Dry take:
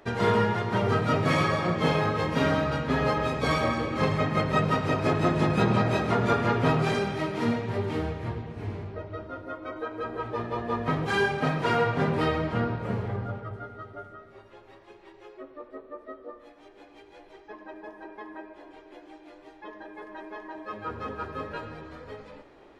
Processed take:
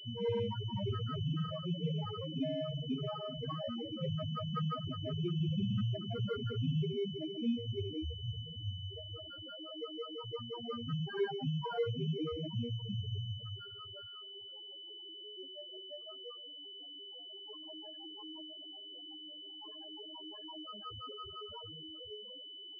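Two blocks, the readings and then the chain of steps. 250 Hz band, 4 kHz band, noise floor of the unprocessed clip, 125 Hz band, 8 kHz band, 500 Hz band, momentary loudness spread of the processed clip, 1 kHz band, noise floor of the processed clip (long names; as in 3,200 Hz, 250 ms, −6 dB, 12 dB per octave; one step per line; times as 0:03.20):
−10.5 dB, −1.0 dB, −53 dBFS, −8.0 dB, below −25 dB, −12.0 dB, 11 LU, −18.5 dB, −50 dBFS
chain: high-pass filter 41 Hz 12 dB per octave
spectral peaks only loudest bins 2
high-frequency loss of the air 390 metres
switching amplifier with a slow clock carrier 3,000 Hz
level −3.5 dB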